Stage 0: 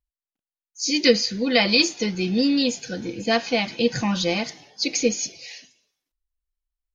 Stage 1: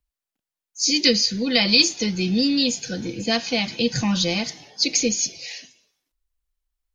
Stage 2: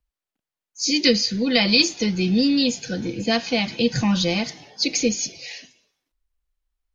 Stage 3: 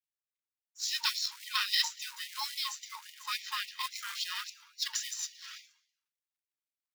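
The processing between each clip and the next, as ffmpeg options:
-filter_complex "[0:a]acrossover=split=200|3000[a][b][c];[b]acompressor=threshold=-44dB:ratio=1.5[d];[a][d][c]amix=inputs=3:normalize=0,volume=5dB"
-af "highshelf=f=4.8k:g=-8.5,volume=2dB"
-af "acrusher=bits=3:mode=log:mix=0:aa=0.000001,aeval=exprs='val(0)*sin(2*PI*580*n/s)':c=same,afftfilt=real='re*gte(b*sr/1024,850*pow(1900/850,0.5+0.5*sin(2*PI*3.6*pts/sr)))':imag='im*gte(b*sr/1024,850*pow(1900/850,0.5+0.5*sin(2*PI*3.6*pts/sr)))':win_size=1024:overlap=0.75,volume=-8dB"

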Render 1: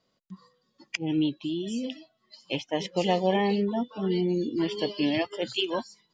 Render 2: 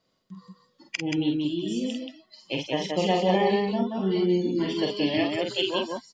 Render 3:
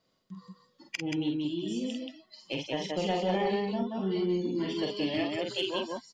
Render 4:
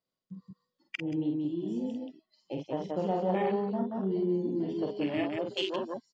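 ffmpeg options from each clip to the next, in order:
-af "aecho=1:1:47|179:0.631|0.668"
-filter_complex "[0:a]asplit=2[a][b];[b]acompressor=threshold=-33dB:ratio=6,volume=-1dB[c];[a][c]amix=inputs=2:normalize=0,asoftclip=type=tanh:threshold=-11dB,volume=-7dB"
-af "afwtdn=0.0158"

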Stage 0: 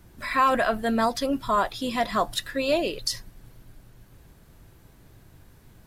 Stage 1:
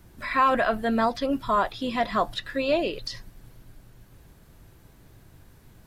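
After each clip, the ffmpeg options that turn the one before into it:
-filter_complex "[0:a]acrossover=split=4500[a][b];[b]acompressor=threshold=-55dB:ratio=4:attack=1:release=60[c];[a][c]amix=inputs=2:normalize=0"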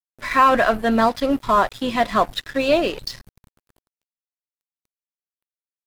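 -af "aeval=exprs='sgn(val(0))*max(abs(val(0))-0.00944,0)':c=same,volume=7dB"

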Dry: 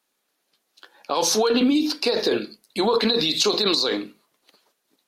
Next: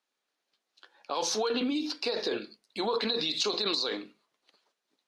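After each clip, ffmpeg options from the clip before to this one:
-af "lowpass=6.4k,lowshelf=f=320:g=-6.5,volume=-7.5dB"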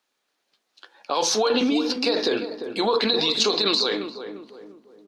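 -filter_complex "[0:a]asplit=2[a][b];[b]adelay=348,lowpass=f=1k:p=1,volume=-8dB,asplit=2[c][d];[d]adelay=348,lowpass=f=1k:p=1,volume=0.45,asplit=2[e][f];[f]adelay=348,lowpass=f=1k:p=1,volume=0.45,asplit=2[g][h];[h]adelay=348,lowpass=f=1k:p=1,volume=0.45,asplit=2[i][j];[j]adelay=348,lowpass=f=1k:p=1,volume=0.45[k];[a][c][e][g][i][k]amix=inputs=6:normalize=0,volume=8dB"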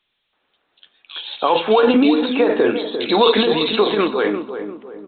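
-filter_complex "[0:a]acrossover=split=2700[a][b];[a]adelay=330[c];[c][b]amix=inputs=2:normalize=0,volume=8dB" -ar 8000 -c:a pcm_alaw

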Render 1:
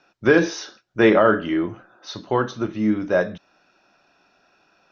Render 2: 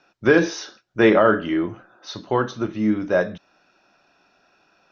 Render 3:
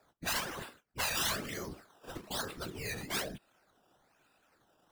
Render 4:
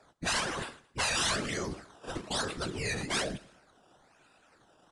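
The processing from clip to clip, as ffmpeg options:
-af anull
-af "acrusher=samples=14:mix=1:aa=0.000001:lfo=1:lforange=14:lforate=1.1,afftfilt=real='re*lt(hypot(re,im),0.282)':imag='im*lt(hypot(re,im),0.282)':win_size=1024:overlap=0.75,afftfilt=real='hypot(re,im)*cos(2*PI*random(0))':imag='hypot(re,im)*sin(2*PI*random(1))':win_size=512:overlap=0.75,volume=-3dB"
-af "asoftclip=type=tanh:threshold=-30.5dB,aecho=1:1:110|220|330:0.0891|0.0374|0.0157,aresample=22050,aresample=44100,volume=7dB"

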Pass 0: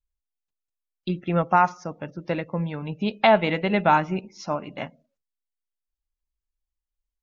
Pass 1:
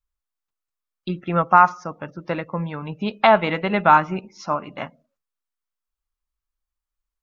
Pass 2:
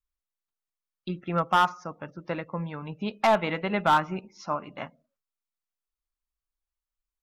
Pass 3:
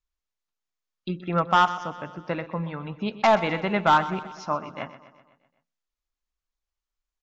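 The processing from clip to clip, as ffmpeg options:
-af "equalizer=f=1.2k:w=1.8:g=9.5"
-af "volume=8.5dB,asoftclip=hard,volume=-8.5dB,volume=-6dB"
-af "aecho=1:1:126|252|378|504|630|756:0.178|0.101|0.0578|0.0329|0.0188|0.0107,aresample=16000,aresample=44100,volume=2.5dB"

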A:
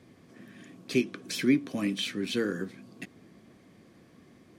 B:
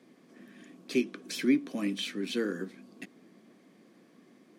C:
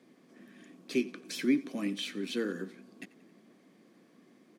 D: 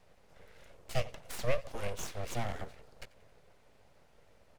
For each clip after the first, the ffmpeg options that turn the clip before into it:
-af "highpass=f=200:w=0.5412,highpass=f=200:w=1.3066,lowshelf=f=260:g=4.5,volume=-3dB"
-af "aecho=1:1:90|180|270|360:0.0944|0.0519|0.0286|0.0157,volume=-2dB"
-af "aeval=exprs='abs(val(0))':c=same"

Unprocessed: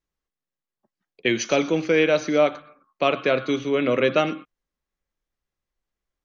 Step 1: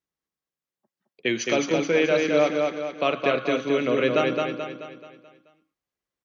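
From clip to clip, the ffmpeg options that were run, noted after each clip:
-filter_complex "[0:a]highpass=100,asplit=2[a][b];[b]aecho=0:1:216|432|648|864|1080|1296:0.668|0.314|0.148|0.0694|0.0326|0.0153[c];[a][c]amix=inputs=2:normalize=0,volume=-3dB"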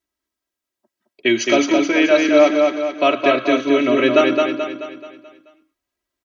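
-af "aecho=1:1:3.1:0.94,volume=4.5dB"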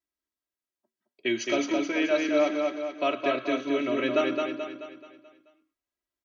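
-af "flanger=delay=5.6:depth=1.8:regen=-85:speed=0.79:shape=triangular,volume=-6.5dB"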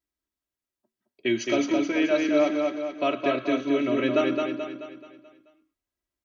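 -af "lowshelf=f=230:g=10"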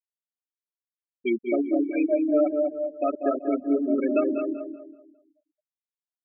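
-filter_complex "[0:a]afftfilt=real='re*gte(hypot(re,im),0.178)':imag='im*gte(hypot(re,im),0.178)':win_size=1024:overlap=0.75,asplit=2[a][b];[b]adelay=191,lowpass=f=1.9k:p=1,volume=-9.5dB,asplit=2[c][d];[d]adelay=191,lowpass=f=1.9k:p=1,volume=0.38,asplit=2[e][f];[f]adelay=191,lowpass=f=1.9k:p=1,volume=0.38,asplit=2[g][h];[h]adelay=191,lowpass=f=1.9k:p=1,volume=0.38[i];[a][c][e][g][i]amix=inputs=5:normalize=0"

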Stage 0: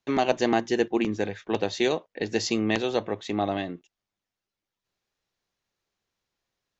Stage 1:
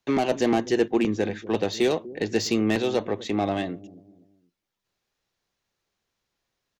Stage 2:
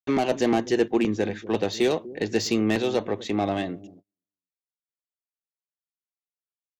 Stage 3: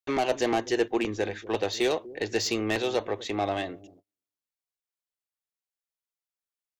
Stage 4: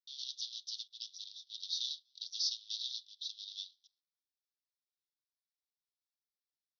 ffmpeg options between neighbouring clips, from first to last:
-filter_complex "[0:a]acrossover=split=480[a][b];[a]aecho=1:1:245|490|735:0.188|0.0678|0.0244[c];[b]asoftclip=type=tanh:threshold=-25.5dB[d];[c][d]amix=inputs=2:normalize=0,volume=3dB"
-af "agate=range=-39dB:threshold=-45dB:ratio=16:detection=peak"
-af "equalizer=f=190:w=1.1:g=-12.5"
-af "afreqshift=70,aeval=exprs='max(val(0),0)':c=same,asuperpass=centerf=4500:order=12:qfactor=1.8,volume=4dB"

